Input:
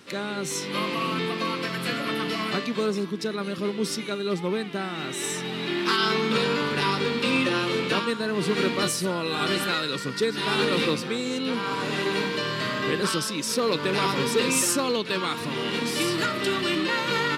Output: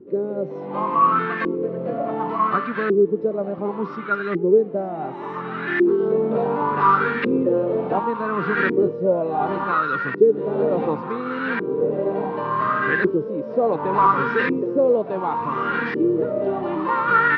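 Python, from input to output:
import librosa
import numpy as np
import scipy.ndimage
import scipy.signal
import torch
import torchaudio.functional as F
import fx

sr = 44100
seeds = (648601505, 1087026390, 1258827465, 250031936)

y = fx.echo_thinned(x, sr, ms=922, feedback_pct=69, hz=1100.0, wet_db=-10.5)
y = fx.filter_lfo_lowpass(y, sr, shape='saw_up', hz=0.69, low_hz=360.0, high_hz=1800.0, q=6.6)
y = scipy.signal.sosfilt(scipy.signal.butter(4, 5600.0, 'lowpass', fs=sr, output='sos'), y)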